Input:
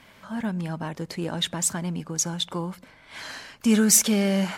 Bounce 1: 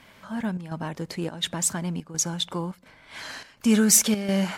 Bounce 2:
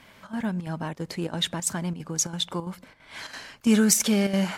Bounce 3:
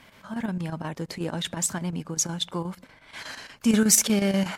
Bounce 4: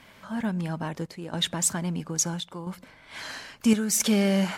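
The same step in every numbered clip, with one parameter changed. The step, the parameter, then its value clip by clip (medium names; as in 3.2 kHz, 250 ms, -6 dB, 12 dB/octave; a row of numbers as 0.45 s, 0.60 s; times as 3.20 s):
square tremolo, rate: 1.4 Hz, 3 Hz, 8.3 Hz, 0.75 Hz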